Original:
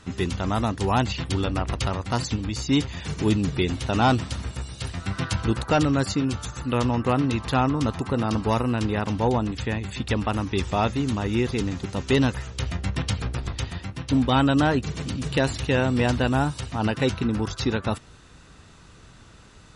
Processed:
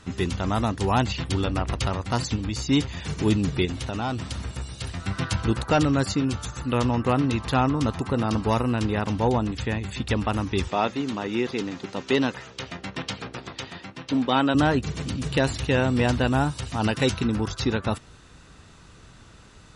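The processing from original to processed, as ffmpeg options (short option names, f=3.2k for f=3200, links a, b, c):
-filter_complex "[0:a]asettb=1/sr,asplit=3[a][b][c];[a]atrim=end=3.654[d];[b]atrim=start=3.65:end=5,asetpts=PTS-STARTPTS,afade=t=in:d=0.004:c=qsin,afade=t=out:st=1.346:d=0.004:c=qsin,acompressor=threshold=-26dB:ratio=4:attack=3.2:release=140:knee=1:detection=peak[e];[c]atrim=start=4.996[f];[d][e]acrossfade=d=0.004:c1=hsin:c2=qsin[g];[g][f]acrossfade=d=0.004:c1=qsin:c2=hsin,asettb=1/sr,asplit=3[h][i][j];[h]atrim=end=10.684[k];[i]atrim=start=10.68:end=14.55,asetpts=PTS-STARTPTS,afade=t=in:d=0.004:c=qsin,afade=t=out:st=3.866:d=0.004:c=qsin,highpass=230,lowpass=5.9k[l];[j]atrim=start=14.546[m];[k][l]acrossfade=d=0.004:c1=hsin:c2=qsin[n];[n][m]acrossfade=d=0.004:c1=qsin:c2=hsin,asettb=1/sr,asplit=3[o][p][q];[o]atrim=end=16.664[r];[p]atrim=start=16.66:end=17.34,asetpts=PTS-STARTPTS,afade=t=in:d=0.004:c=qsin,afade=t=out:st=0.676:d=0.004:c=qsin,highshelf=f=3.9k:g=8[s];[q]atrim=start=17.336[t];[r][s]acrossfade=d=0.004:c1=hsin:c2=qsin[u];[u][t]acrossfade=d=0.004:c1=qsin:c2=hsin"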